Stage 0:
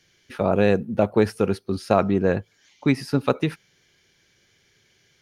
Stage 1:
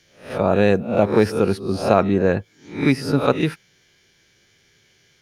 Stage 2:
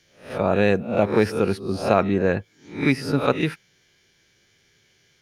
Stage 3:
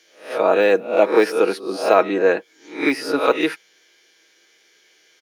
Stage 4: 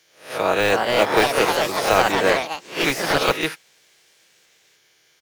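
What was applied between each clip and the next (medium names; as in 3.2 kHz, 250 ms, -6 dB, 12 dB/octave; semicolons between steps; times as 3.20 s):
reverse spectral sustain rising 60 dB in 0.41 s; trim +2 dB
dynamic bell 2.2 kHz, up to +4 dB, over -35 dBFS, Q 1.2; trim -3 dB
high-pass 320 Hz 24 dB/octave; de-esser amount 80%; comb 6.3 ms, depth 42%; trim +5 dB
spectral contrast reduction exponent 0.67; resonant low shelf 150 Hz +13 dB, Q 1.5; ever faster or slower copies 392 ms, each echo +3 st, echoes 3; trim -3 dB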